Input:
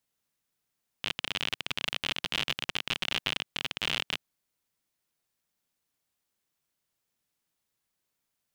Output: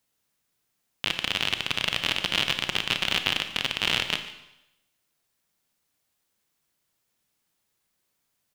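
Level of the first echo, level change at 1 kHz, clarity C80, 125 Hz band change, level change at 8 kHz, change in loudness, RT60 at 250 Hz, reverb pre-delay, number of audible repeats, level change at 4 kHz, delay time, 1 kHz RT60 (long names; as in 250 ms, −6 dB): −18.5 dB, +6.0 dB, 11.5 dB, +6.5 dB, +6.0 dB, +6.0 dB, 0.85 s, 29 ms, 1, +6.0 dB, 145 ms, 0.85 s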